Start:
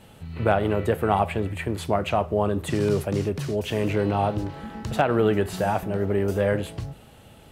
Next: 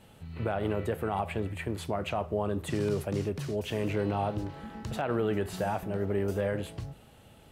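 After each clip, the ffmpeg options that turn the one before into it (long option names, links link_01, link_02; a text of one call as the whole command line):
ffmpeg -i in.wav -af "alimiter=limit=-13.5dB:level=0:latency=1:release=66,volume=-6dB" out.wav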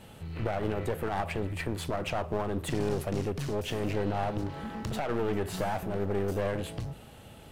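ffmpeg -i in.wav -filter_complex "[0:a]asplit=2[link_01][link_02];[link_02]acompressor=threshold=-36dB:ratio=6,volume=-1dB[link_03];[link_01][link_03]amix=inputs=2:normalize=0,aeval=exprs='clip(val(0),-1,0.0178)':channel_layout=same" out.wav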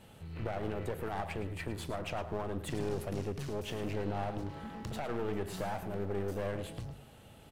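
ffmpeg -i in.wav -af "aecho=1:1:109:0.251,volume=-6dB" out.wav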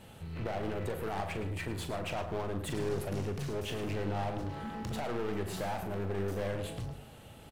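ffmpeg -i in.wav -filter_complex "[0:a]asplit=2[link_01][link_02];[link_02]aeval=exprs='0.0126*(abs(mod(val(0)/0.0126+3,4)-2)-1)':channel_layout=same,volume=-6.5dB[link_03];[link_01][link_03]amix=inputs=2:normalize=0,asplit=2[link_04][link_05];[link_05]adelay=41,volume=-10dB[link_06];[link_04][link_06]amix=inputs=2:normalize=0" out.wav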